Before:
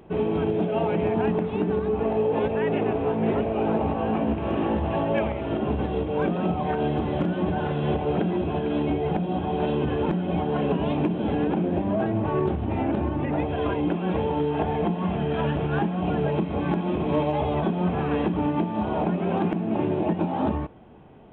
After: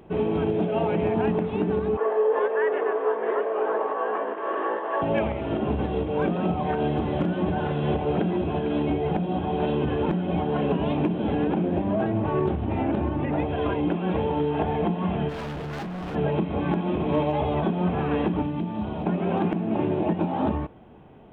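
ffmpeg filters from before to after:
ffmpeg -i in.wav -filter_complex "[0:a]asettb=1/sr,asplit=3[link_01][link_02][link_03];[link_01]atrim=end=1.974[link_04];[link_02]atrim=start=1.97:end=5.02,asetpts=PTS-STARTPTS,afade=type=in:duration=0.004:curve=qsin,afade=type=out:start_time=3.046:duration=0.004:curve=qsin,highpass=frequency=420:width=0.5412,highpass=frequency=420:width=1.3066,equalizer=frequency=430:width_type=q:width=4:gain=5,equalizer=frequency=770:width_type=q:width=4:gain=-4,equalizer=frequency=1100:width_type=q:width=4:gain=9,equalizer=frequency=1700:width_type=q:width=4:gain=9,equalizer=frequency=2500:width_type=q:width=4:gain=-10,lowpass=frequency=3000:width=0.5412,lowpass=frequency=3000:width=1.3066[link_05];[link_03]atrim=start=5.016[link_06];[link_04][link_05]acrossfade=duration=0.004:curve1=hsin:curve2=qsin[link_07];[link_07][link_06]acrossfade=duration=0.004:curve1=qsin:curve2=hsin,asplit=3[link_08][link_09][link_10];[link_08]afade=type=out:start_time=15.28:duration=0.02[link_11];[link_09]asoftclip=type=hard:threshold=-31dB,afade=type=in:start_time=15.28:duration=0.02,afade=type=out:start_time=16.14:duration=0.02[link_12];[link_10]afade=type=in:start_time=16.14:duration=0.02[link_13];[link_11][link_12][link_13]amix=inputs=3:normalize=0,asettb=1/sr,asplit=3[link_14][link_15][link_16];[link_14]atrim=end=18.424[link_17];[link_15]atrim=start=18.42:end=19.06,asetpts=PTS-STARTPTS,afade=type=in:duration=0.004:curve=qsin,afade=type=out:start_time=0.636:duration=0.004:curve=qsin,acrossover=split=250|3000[link_18][link_19][link_20];[link_19]acompressor=threshold=-34dB:ratio=4:attack=3.2:release=140:knee=2.83:detection=peak[link_21];[link_18][link_21][link_20]amix=inputs=3:normalize=0[link_22];[link_16]atrim=start=19.056[link_23];[link_17][link_22]acrossfade=duration=0.004:curve1=hsin:curve2=qsin[link_24];[link_24][link_23]acrossfade=duration=0.004:curve1=qsin:curve2=hsin" out.wav

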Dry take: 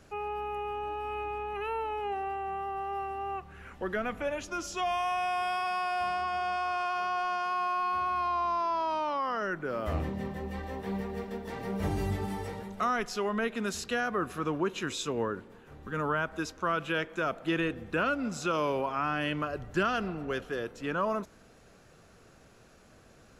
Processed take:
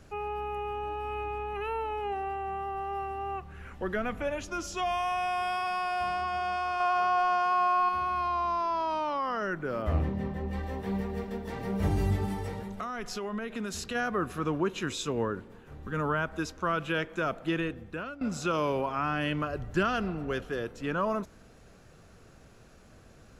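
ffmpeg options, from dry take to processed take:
ffmpeg -i in.wav -filter_complex "[0:a]asettb=1/sr,asplit=3[link_01][link_02][link_03];[link_01]atrim=end=6.804[link_04];[link_02]atrim=start=6.8:end=7.89,asetpts=PTS-STARTPTS,afade=type=in:duration=0.004:curve=qsin,afade=type=out:start_time=1.086:duration=0.004:curve=qsin,equalizer=frequency=790:width_type=o:width=1.7:gain=6[link_05];[link_03]atrim=start=7.886[link_06];[link_04][link_05]acrossfade=duration=0.004:curve1=hsin:curve2=qsin[link_07];[link_07][link_06]acrossfade=duration=0.004:curve1=qsin:curve2=hsin,asettb=1/sr,asplit=3[link_08][link_09][link_10];[link_08]atrim=end=9.824[link_11];[link_09]atrim=start=9.82:end=10.53,asetpts=PTS-STARTPTS,afade=type=in:duration=0.004:curve=qsin,afade=type=out:start_time=0.706:duration=0.004:curve=qsin,highshelf=frequency=4500:gain=-9[link_12];[link_10]atrim=start=10.526[link_13];[link_11][link_12]acrossfade=duration=0.004:curve1=hsin:curve2=qsin[link_14];[link_14][link_13]acrossfade=duration=0.004:curve1=qsin:curve2=hsin,asplit=3[link_15][link_16][link_17];[link_15]afade=type=out:start_time=12.33:duration=0.02[link_18];[link_16]acompressor=threshold=-32dB:ratio=6:attack=3.2:release=140:knee=1:detection=peak,afade=type=in:start_time=12.33:duration=0.02,afade=type=out:start_time=13.94:duration=0.02[link_19];[link_17]afade=type=in:start_time=13.94:duration=0.02[link_20];[link_18][link_19][link_20]amix=inputs=3:normalize=0,asplit=2[link_21][link_22];[link_21]atrim=end=18.21,asetpts=PTS-STARTPTS,afade=type=out:start_time=17.36:duration=0.85:silence=0.149624[link_23];[link_22]atrim=start=18.21,asetpts=PTS-STARTPTS,afade=type=in:duration=0.004:curve=hsin:silence=0.149624[link_24];[link_23][link_24]concat=n=2:v=0:a=1,lowshelf=frequency=160:gain=7" out.wav

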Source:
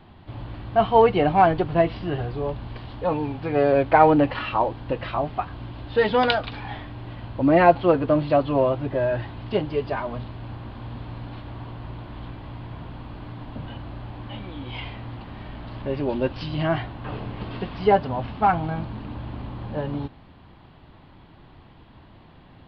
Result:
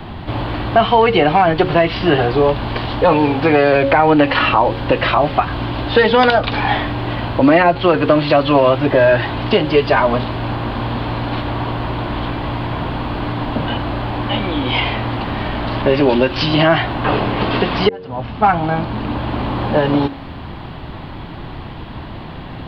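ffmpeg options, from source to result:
ffmpeg -i in.wav -filter_complex "[0:a]asplit=2[link_01][link_02];[link_01]atrim=end=17.89,asetpts=PTS-STARTPTS,afade=type=out:start_time=17.886:duration=0.004:curve=hsin[link_03];[link_02]atrim=start=17.89,asetpts=PTS-STARTPTS,afade=type=in:duration=1.68[link_04];[link_03][link_04]concat=n=2:v=0:a=1,bandreject=frequency=91.96:width_type=h:width=4,bandreject=frequency=183.92:width_type=h:width=4,bandreject=frequency=275.88:width_type=h:width=4,bandreject=frequency=367.84:width_type=h:width=4,bandreject=frequency=459.8:width_type=h:width=4,bandreject=frequency=551.76:width_type=h:width=4,acrossover=split=250|1300[link_05][link_06][link_07];[link_05]acompressor=threshold=-43dB:ratio=4[link_08];[link_06]acompressor=threshold=-31dB:ratio=4[link_09];[link_07]acompressor=threshold=-36dB:ratio=4[link_10];[link_08][link_09][link_10]amix=inputs=3:normalize=0,alimiter=level_in=20.5dB:limit=-1dB:release=50:level=0:latency=1,volume=-1dB" out.wav

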